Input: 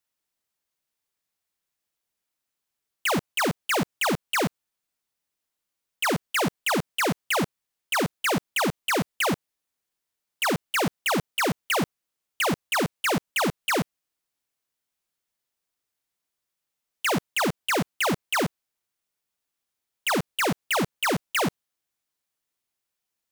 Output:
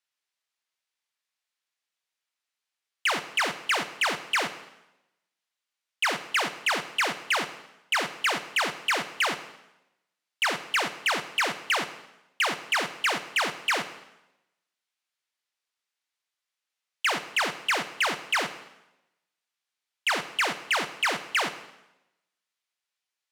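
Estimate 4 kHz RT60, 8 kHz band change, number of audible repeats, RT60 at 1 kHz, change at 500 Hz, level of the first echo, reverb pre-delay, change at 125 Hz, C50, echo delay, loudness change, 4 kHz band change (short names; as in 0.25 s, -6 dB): 0.85 s, -3.0 dB, none, 0.90 s, -6.5 dB, none, 7 ms, -16.5 dB, 12.5 dB, none, -1.0 dB, +1.5 dB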